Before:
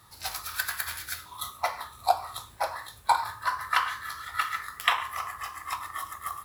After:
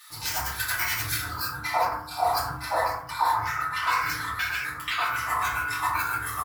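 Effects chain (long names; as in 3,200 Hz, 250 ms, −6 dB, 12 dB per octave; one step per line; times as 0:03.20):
pitch shifter gated in a rhythm +4 semitones, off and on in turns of 258 ms
reversed playback
downward compressor 6 to 1, threshold −36 dBFS, peak gain reduction 18.5 dB
reversed playback
multiband delay without the direct sound highs, lows 100 ms, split 1,500 Hz
feedback delay network reverb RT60 0.57 s, low-frequency decay 1.4×, high-frequency decay 0.4×, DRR −7.5 dB
level +6.5 dB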